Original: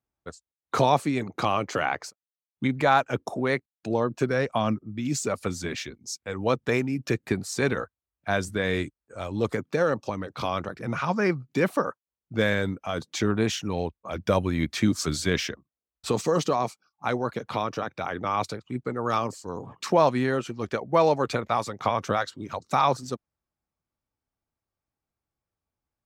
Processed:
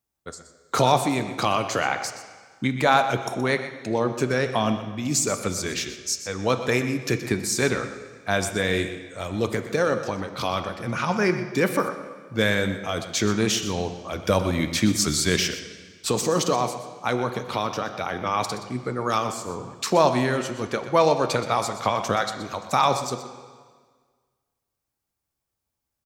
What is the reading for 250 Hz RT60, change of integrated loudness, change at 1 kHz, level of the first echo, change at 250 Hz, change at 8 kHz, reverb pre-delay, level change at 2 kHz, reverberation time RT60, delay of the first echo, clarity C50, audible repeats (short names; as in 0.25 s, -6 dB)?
1.7 s, +2.5 dB, +2.5 dB, -13.0 dB, +2.0 dB, +9.5 dB, 7 ms, +3.5 dB, 1.6 s, 0.123 s, 8.5 dB, 1